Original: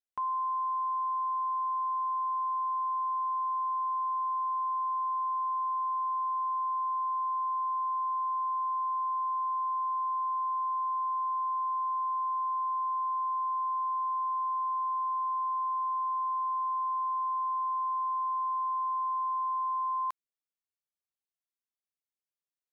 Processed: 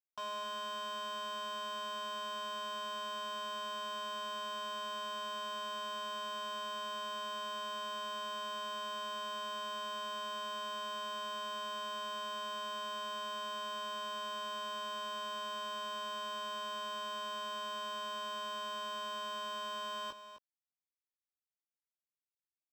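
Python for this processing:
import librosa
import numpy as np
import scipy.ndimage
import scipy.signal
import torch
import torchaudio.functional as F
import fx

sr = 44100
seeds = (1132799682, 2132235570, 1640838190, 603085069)

y = scipy.signal.medfilt(x, 41)
y = fx.doubler(y, sr, ms=18.0, db=-4.5)
y = y + 10.0 ** (-11.5 / 20.0) * np.pad(y, (int(259 * sr / 1000.0), 0))[:len(y)]
y = np.interp(np.arange(len(y)), np.arange(len(y))[::4], y[::4])
y = y * librosa.db_to_amplitude(12.5)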